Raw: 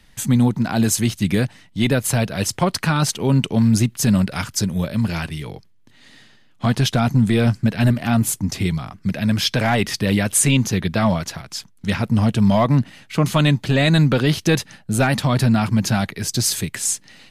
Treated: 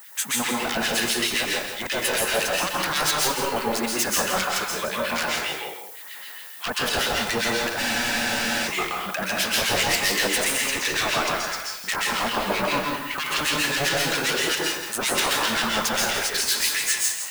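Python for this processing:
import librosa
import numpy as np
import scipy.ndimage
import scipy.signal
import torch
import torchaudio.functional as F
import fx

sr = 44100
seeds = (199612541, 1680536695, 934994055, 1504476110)

p1 = scipy.signal.sosfilt(scipy.signal.butter(2, 590.0, 'highpass', fs=sr, output='sos'), x)
p2 = fx.peak_eq(p1, sr, hz=1300.0, db=12.0, octaves=2.5)
p3 = fx.over_compress(p2, sr, threshold_db=-19.0, ratio=-1.0)
p4 = p2 + (p3 * 10.0 ** (-1.0 / 20.0))
p5 = 10.0 ** (-11.5 / 20.0) * (np.abs((p4 / 10.0 ** (-11.5 / 20.0) + 3.0) % 4.0 - 2.0) - 1.0)
p6 = fx.harmonic_tremolo(p5, sr, hz=7.6, depth_pct=100, crossover_hz=1500.0)
p7 = fx.dmg_noise_colour(p6, sr, seeds[0], colour='violet', level_db=-41.0)
p8 = p7 + fx.echo_single(p7, sr, ms=166, db=-8.5, dry=0)
p9 = fx.rev_plate(p8, sr, seeds[1], rt60_s=0.53, hf_ratio=0.95, predelay_ms=115, drr_db=-2.0)
p10 = fx.spec_freeze(p9, sr, seeds[2], at_s=7.81, hold_s=0.86)
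y = p10 * 10.0 ** (-5.0 / 20.0)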